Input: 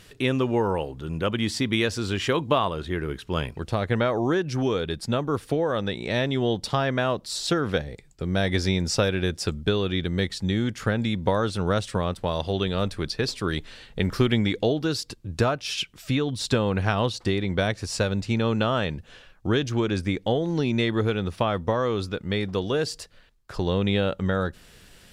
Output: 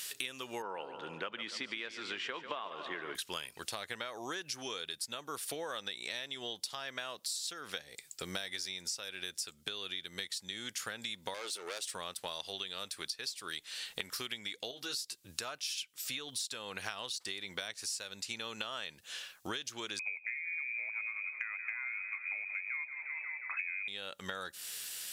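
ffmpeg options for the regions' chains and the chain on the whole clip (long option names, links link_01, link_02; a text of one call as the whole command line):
ffmpeg -i in.wav -filter_complex "[0:a]asettb=1/sr,asplit=3[link_01][link_02][link_03];[link_01]atrim=end=0.624[link_04];[link_02]atrim=start=0.62:end=3.15,asetpts=PTS-STARTPTS,afade=type=in:duration=0.004:curve=qsin,afade=type=out:start_time=2.526:duration=0.004:curve=qsin,highpass=190,lowpass=2000,aecho=1:1:143|286|429|572|715|858:0.211|0.127|0.0761|0.0457|0.0274|0.0164,atrim=end_sample=111573[link_05];[link_03]atrim=start=3.146[link_06];[link_04][link_05]acrossfade=duration=0.004:curve1=hsin:curve2=qsin[link_07];[link_07][link_06]acrossfade=duration=0.004:curve1=qsin:curve2=hsin,asettb=1/sr,asplit=3[link_08][link_09][link_10];[link_08]atrim=end=11.344[link_11];[link_09]atrim=start=11.34:end=11.94,asetpts=PTS-STARTPTS,afade=type=in:duration=0.004:curve=qsin,afade=type=out:start_time=0.596:duration=0.004:curve=qsin,highpass=frequency=380:width_type=q:width=2.4,aeval=exprs='(tanh(12.6*val(0)+0.3)-tanh(0.3))/12.6':channel_layout=same[link_12];[link_10]atrim=start=11.936[link_13];[link_11][link_12]acrossfade=duration=0.004:curve1=hsin:curve2=qsin[link_14];[link_14][link_13]acrossfade=duration=0.004:curve1=qsin:curve2=hsin,asettb=1/sr,asplit=3[link_15][link_16][link_17];[link_15]atrim=end=14.714[link_18];[link_16]atrim=start=14.71:end=15.2,asetpts=PTS-STARTPTS,afade=type=in:duration=0.004:curve=qsin,afade=type=out:start_time=0.486:duration=0.004:curve=qsin,asplit=2[link_19][link_20];[link_20]adelay=15,volume=-4dB[link_21];[link_19][link_21]amix=inputs=2:normalize=0,atrim=end_sample=21609,acompressor=threshold=-40dB:ratio=1.5:attack=3.2:release=140:knee=1:detection=peak[link_22];[link_17]atrim=start=15.196[link_23];[link_18][link_22]acrossfade=duration=0.004:curve1=hsin:curve2=qsin[link_24];[link_24][link_23]acrossfade=duration=0.004:curve1=qsin:curve2=hsin,asettb=1/sr,asplit=3[link_25][link_26][link_27];[link_25]atrim=end=19.994[link_28];[link_26]atrim=start=19.99:end=23.88,asetpts=PTS-STARTPTS,afade=type=in:duration=0.004:curve=qsin,afade=type=out:start_time=3.886:duration=0.004:curve=qsin,lowpass=frequency=2200:width_type=q:width=0.5098,lowpass=frequency=2200:width_type=q:width=0.6013,lowpass=frequency=2200:width_type=q:width=0.9,lowpass=frequency=2200:width_type=q:width=2.563,afreqshift=-2600,asplit=8[link_29][link_30][link_31][link_32][link_33][link_34][link_35][link_36];[link_30]adelay=178,afreqshift=-32,volume=-13dB[link_37];[link_31]adelay=356,afreqshift=-64,volume=-17.3dB[link_38];[link_32]adelay=534,afreqshift=-96,volume=-21.6dB[link_39];[link_33]adelay=712,afreqshift=-128,volume=-25.9dB[link_40];[link_34]adelay=890,afreqshift=-160,volume=-30.2dB[link_41];[link_35]adelay=1068,afreqshift=-192,volume=-34.5dB[link_42];[link_36]adelay=1246,afreqshift=-224,volume=-38.8dB[link_43];[link_29][link_37][link_38][link_39][link_40][link_41][link_42][link_43]amix=inputs=8:normalize=0,atrim=end_sample=171549[link_44];[link_27]atrim=start=23.876[link_45];[link_28][link_44]acrossfade=duration=0.004:curve1=hsin:curve2=qsin[link_46];[link_46][link_45]acrossfade=duration=0.004:curve1=qsin:curve2=hsin,aderivative,acompressor=threshold=-51dB:ratio=16,volume=15dB" out.wav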